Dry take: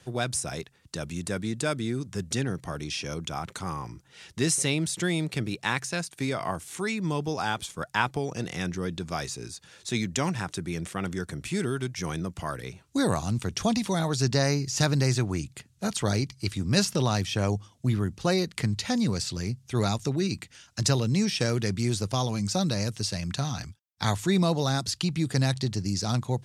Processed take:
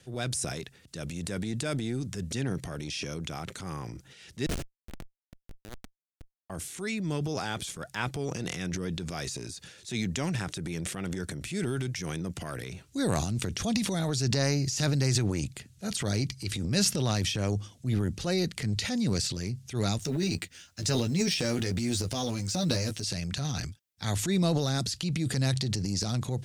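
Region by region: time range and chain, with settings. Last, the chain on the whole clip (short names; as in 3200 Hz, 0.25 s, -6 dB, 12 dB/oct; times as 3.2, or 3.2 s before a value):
4.46–6.5 compressor 2.5:1, threshold -34 dBFS + Schmitt trigger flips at -27.5 dBFS
19.99–23.04 G.711 law mismatch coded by A + doubler 12 ms -4 dB
whole clip: bell 1000 Hz -8 dB 0.87 oct; transient shaper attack -5 dB, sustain +9 dB; gain -2 dB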